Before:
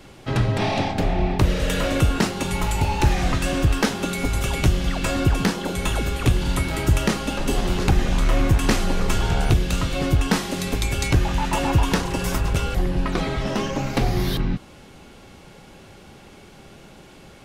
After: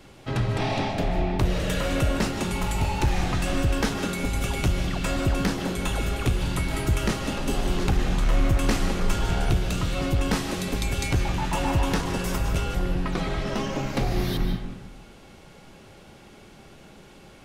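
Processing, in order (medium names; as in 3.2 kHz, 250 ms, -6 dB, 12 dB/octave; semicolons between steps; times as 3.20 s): saturation -9 dBFS, distortion -22 dB; on a send: reverberation RT60 1.0 s, pre-delay 110 ms, DRR 6 dB; on the sum: trim -4 dB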